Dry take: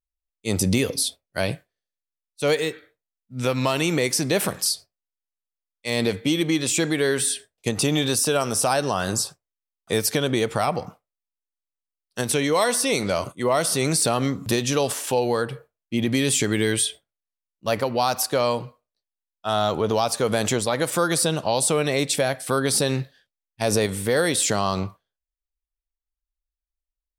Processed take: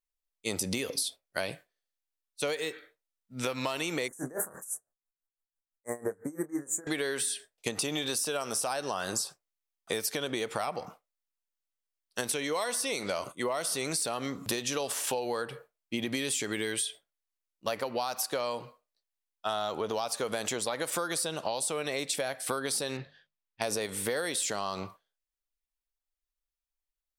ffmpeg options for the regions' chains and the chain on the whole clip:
-filter_complex "[0:a]asettb=1/sr,asplit=3[a][b][c];[a]atrim=end=4.084[d];[b]atrim=start=4.08:end=6.87,asetpts=PTS-STARTPTS,afade=t=in:d=0.004:c=qsin,afade=t=out:st=2.786:d=0.004:c=qsin,asuperstop=centerf=3500:order=12:qfactor=0.7,asplit=2[e][f];[f]adelay=28,volume=-7dB[g];[e][g]amix=inputs=2:normalize=0,atrim=end_sample=123039,aeval=exprs='val(0)*pow(10,-24*(0.5-0.5*cos(2*PI*6*n/s))/20)':c=same[h];[c]atrim=start=6.866[i];[d][h]acrossfade=d=0.004:c1=hsin:c2=qsin[j];[j][i]acrossfade=d=0.004:c1=qsin:c2=hsin,asettb=1/sr,asplit=3[k][l][m];[k]atrim=end=22.974[n];[l]atrim=start=22.97:end=23.62,asetpts=PTS-STARTPTS,afade=t=in:d=0.004:c=qsin,afade=t=out:st=0.646:d=0.004:c=qsin,lowpass=3.7k,bandreject=f=50:t=h:w=6,bandreject=f=100:t=h:w=6,bandreject=f=150:t=h:w=6,bandreject=f=200:t=h:w=6[o];[m]atrim=start=23.616[p];[n][o]acrossfade=d=0.004:c1=hsin:c2=qsin[q];[q][p]acrossfade=d=0.004:c1=qsin:c2=hsin,equalizer=f=85:t=o:w=3:g=-13,acompressor=threshold=-28dB:ratio=10"

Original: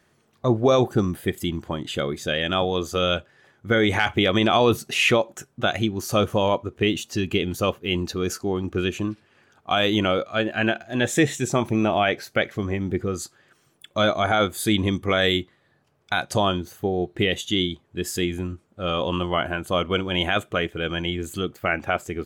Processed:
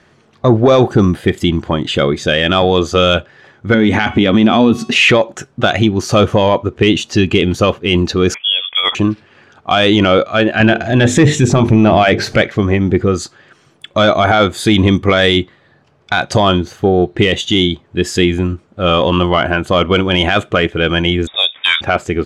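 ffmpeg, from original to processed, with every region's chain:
-filter_complex "[0:a]asettb=1/sr,asplit=3[a][b][c];[a]atrim=end=3.744[d];[b]atrim=start=3.74:end=4.96,asetpts=PTS-STARTPTS,afade=t=in:d=0.004:c=qsin,afade=t=out:st=1.216:d=0.004:c=qsin,equalizer=f=240:t=o:w=0.62:g=15,bandreject=f=371.3:t=h:w=4,bandreject=f=742.6:t=h:w=4,bandreject=f=1.1139k:t=h:w=4,bandreject=f=1.4852k:t=h:w=4,bandreject=f=1.8565k:t=h:w=4,bandreject=f=2.2278k:t=h:w=4,bandreject=f=2.5991k:t=h:w=4,bandreject=f=2.9704k:t=h:w=4,bandreject=f=3.3417k:t=h:w=4,bandreject=f=3.713k:t=h:w=4,bandreject=f=4.0843k:t=h:w=4,bandreject=f=4.4556k:t=h:w=4,bandreject=f=4.8269k:t=h:w=4,bandreject=f=5.1982k:t=h:w=4,bandreject=f=5.5695k:t=h:w=4,bandreject=f=5.9408k:t=h:w=4,bandreject=f=6.3121k:t=h:w=4,bandreject=f=6.6834k:t=h:w=4,bandreject=f=7.0547k:t=h:w=4,bandreject=f=7.426k:t=h:w=4,bandreject=f=7.7973k:t=h:w=4,bandreject=f=8.1686k:t=h:w=4,bandreject=f=8.5399k:t=h:w=4,bandreject=f=8.9112k:t=h:w=4,bandreject=f=9.2825k:t=h:w=4,bandreject=f=9.6538k:t=h:w=4,bandreject=f=10.0251k:t=h:w=4,bandreject=f=10.3964k:t=h:w=4,bandreject=f=10.7677k:t=h:w=4,bandreject=f=11.139k:t=h:w=4,acompressor=threshold=-25dB:ratio=2:attack=3.2:release=140:knee=1:detection=peak[e];[c]atrim=start=4.956[f];[d][e]acrossfade=d=0.004:c1=hsin:c2=qsin[g];[g][f]acrossfade=d=0.004:c1=qsin:c2=hsin,asettb=1/sr,asplit=3[h][i][j];[h]atrim=end=8.344[k];[i]atrim=start=8.34:end=8.95,asetpts=PTS-STARTPTS,afade=t=in:d=0.004:c=qsin,afade=t=out:st=0.606:d=0.004:c=qsin,highpass=360,lowpass=f=3.1k:t=q:w=0.5098,lowpass=f=3.1k:t=q:w=0.6013,lowpass=f=3.1k:t=q:w=0.9,lowpass=f=3.1k:t=q:w=2.563,afreqshift=-3700[l];[j]atrim=start=8.946[m];[k][l]acrossfade=d=0.004:c1=hsin:c2=qsin[n];[n][m]acrossfade=d=0.004:c1=qsin:c2=hsin,asettb=1/sr,asplit=3[o][p][q];[o]atrim=end=10.604[r];[p]atrim=start=10.6:end=12.42,asetpts=PTS-STARTPTS,afade=t=in:d=0.004:c=qsin,afade=t=out:st=1.816:d=0.004:c=qsin,lowshelf=f=250:g=10,acompressor=mode=upward:threshold=-20dB:ratio=2.5:attack=3.2:release=140:knee=2.83:detection=peak,bandreject=f=50:t=h:w=6,bandreject=f=100:t=h:w=6,bandreject=f=150:t=h:w=6,bandreject=f=200:t=h:w=6,bandreject=f=250:t=h:w=6,bandreject=f=300:t=h:w=6,bandreject=f=350:t=h:w=6,bandreject=f=400:t=h:w=6,bandreject=f=450:t=h:w=6[s];[q]atrim=start=12.416[t];[r][s]acrossfade=d=0.004:c1=hsin:c2=qsin[u];[u][t]acrossfade=d=0.004:c1=qsin:c2=hsin,asettb=1/sr,asplit=3[v][w][x];[v]atrim=end=21.274[y];[w]atrim=start=21.27:end=21.81,asetpts=PTS-STARTPTS,afade=t=in:d=0.004:c=qsin,afade=t=out:st=0.536:d=0.004:c=qsin,asoftclip=type=hard:threshold=-15dB,lowpass=f=3.2k:t=q:w=0.5098,lowpass=f=3.2k:t=q:w=0.6013,lowpass=f=3.2k:t=q:w=0.9,lowpass=f=3.2k:t=q:w=2.563,afreqshift=-3800[z];[x]atrim=start=21.806[aa];[y][z]acrossfade=d=0.004:c1=hsin:c2=qsin[ab];[ab][aa]acrossfade=d=0.004:c1=qsin:c2=hsin,lowpass=5.4k,acontrast=72,alimiter=limit=-8.5dB:level=0:latency=1:release=17,volume=6.5dB"

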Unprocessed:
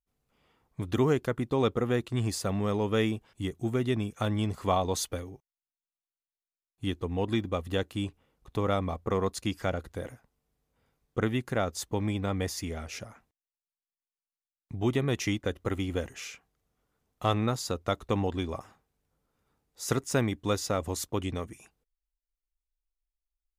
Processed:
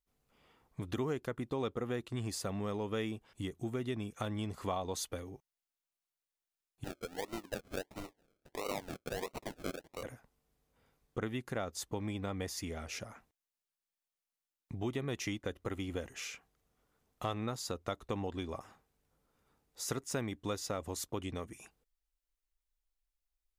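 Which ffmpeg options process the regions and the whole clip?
-filter_complex "[0:a]asettb=1/sr,asplit=3[a][b][c];[a]atrim=end=6.844[d];[b]atrim=start=6.84:end=10.03,asetpts=PTS-STARTPTS,afade=t=in:d=0.004:c=qsin,afade=t=out:st=3.186:d=0.004:c=qsin,highpass=530,acrusher=samples=37:mix=1:aa=0.000001:lfo=1:lforange=22.2:lforate=1.5[e];[c]atrim=start=10.026[f];[d][e]acrossfade=d=0.004:c1=hsin:c2=qsin[g];[g][f]acrossfade=d=0.004:c1=qsin:c2=hsin,equalizer=f=89:t=o:w=2.3:g=-3,acompressor=threshold=-43dB:ratio=2,volume=1.5dB"

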